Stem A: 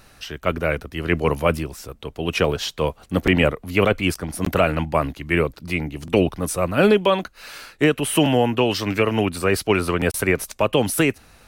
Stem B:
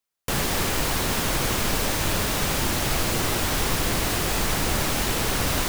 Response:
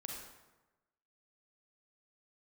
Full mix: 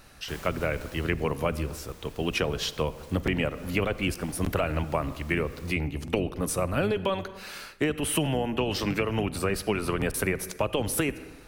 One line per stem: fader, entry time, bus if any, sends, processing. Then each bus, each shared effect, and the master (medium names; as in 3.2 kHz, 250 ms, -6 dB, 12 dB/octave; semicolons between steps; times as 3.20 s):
-4.0 dB, 0.00 s, send -11 dB, octave divider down 1 oct, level -5 dB
-16.5 dB, 0.00 s, no send, auto duck -11 dB, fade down 1.50 s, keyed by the first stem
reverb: on, RT60 1.1 s, pre-delay 32 ms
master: compression, threshold -23 dBFS, peak gain reduction 10 dB